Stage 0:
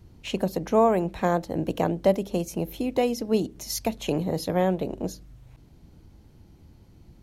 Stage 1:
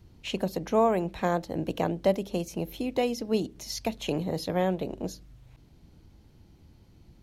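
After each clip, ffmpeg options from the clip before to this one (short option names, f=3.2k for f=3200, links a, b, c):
-filter_complex "[0:a]acrossover=split=6000[a][b];[a]equalizer=f=4.1k:t=o:w=2.1:g=4[c];[b]alimiter=level_in=10dB:limit=-24dB:level=0:latency=1:release=121,volume=-10dB[d];[c][d]amix=inputs=2:normalize=0,volume=-3.5dB"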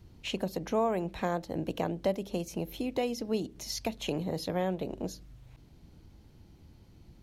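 -af "acompressor=threshold=-34dB:ratio=1.5"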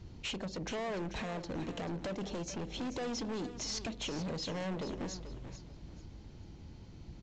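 -af "alimiter=level_in=3dB:limit=-24dB:level=0:latency=1:release=202,volume=-3dB,aresample=16000,asoftclip=type=hard:threshold=-40dB,aresample=44100,aecho=1:1:437|874|1311:0.266|0.0718|0.0194,volume=4.5dB"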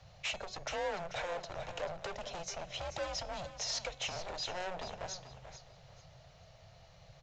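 -af "afreqshift=-180,lowshelf=f=430:t=q:w=3:g=-11,bandreject=f=370.3:t=h:w=4,bandreject=f=740.6:t=h:w=4,bandreject=f=1.1109k:t=h:w=4,bandreject=f=1.4812k:t=h:w=4,bandreject=f=1.8515k:t=h:w=4,bandreject=f=2.2218k:t=h:w=4,bandreject=f=2.5921k:t=h:w=4,bandreject=f=2.9624k:t=h:w=4,bandreject=f=3.3327k:t=h:w=4,bandreject=f=3.703k:t=h:w=4,bandreject=f=4.0733k:t=h:w=4,bandreject=f=4.4436k:t=h:w=4,bandreject=f=4.8139k:t=h:w=4,bandreject=f=5.1842k:t=h:w=4,bandreject=f=5.5545k:t=h:w=4,bandreject=f=5.9248k:t=h:w=4,bandreject=f=6.2951k:t=h:w=4,bandreject=f=6.6654k:t=h:w=4,bandreject=f=7.0357k:t=h:w=4,bandreject=f=7.406k:t=h:w=4,bandreject=f=7.7763k:t=h:w=4,bandreject=f=8.1466k:t=h:w=4,bandreject=f=8.5169k:t=h:w=4,bandreject=f=8.8872k:t=h:w=4,bandreject=f=9.2575k:t=h:w=4,bandreject=f=9.6278k:t=h:w=4,bandreject=f=9.9981k:t=h:w=4,bandreject=f=10.3684k:t=h:w=4,bandreject=f=10.7387k:t=h:w=4,bandreject=f=11.109k:t=h:w=4,bandreject=f=11.4793k:t=h:w=4,bandreject=f=11.8496k:t=h:w=4,bandreject=f=12.2199k:t=h:w=4,bandreject=f=12.5902k:t=h:w=4,bandreject=f=12.9605k:t=h:w=4,bandreject=f=13.3308k:t=h:w=4,volume=2dB"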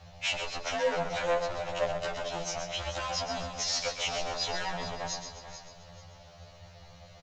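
-af "aecho=1:1:129|258|387|516|645:0.398|0.175|0.0771|0.0339|0.0149,afftfilt=real='re*2*eq(mod(b,4),0)':imag='im*2*eq(mod(b,4),0)':win_size=2048:overlap=0.75,volume=8.5dB"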